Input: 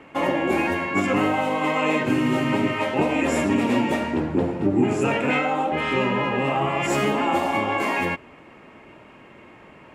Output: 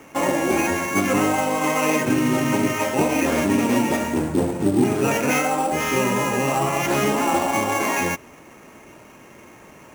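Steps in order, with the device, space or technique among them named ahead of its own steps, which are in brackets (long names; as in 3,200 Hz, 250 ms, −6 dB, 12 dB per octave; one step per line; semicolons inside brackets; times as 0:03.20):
early companding sampler (sample-rate reduction 8,500 Hz, jitter 0%; log-companded quantiser 6 bits)
level +1.5 dB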